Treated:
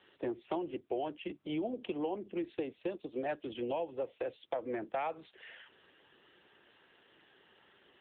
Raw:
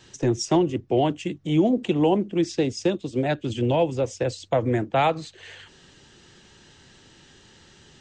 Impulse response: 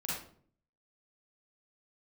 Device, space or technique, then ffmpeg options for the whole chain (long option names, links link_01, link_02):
voicemail: -filter_complex "[0:a]asettb=1/sr,asplit=3[link_01][link_02][link_03];[link_01]atrim=end=3.534[link_04];[link_02]atrim=start=3.53:end=4.93,asetpts=PTS-STARTPTS,afade=type=in:duration=0.004:curve=qsin,afade=type=out:start_time=1.396:duration=0.004:curve=qsin,lowshelf=frequency=72:gain=-4[link_05];[link_03]atrim=start=4.926[link_06];[link_04][link_05]acrossfade=duration=0.004:curve1=hsin:curve2=qsin[link_07];[link_07][link_06]acrossfade=duration=0.004:curve1=qsin:curve2=hsin,highpass=390,lowpass=3200,acompressor=threshold=-26dB:ratio=6,volume=-5.5dB" -ar 8000 -c:a libopencore_amrnb -b:a 7950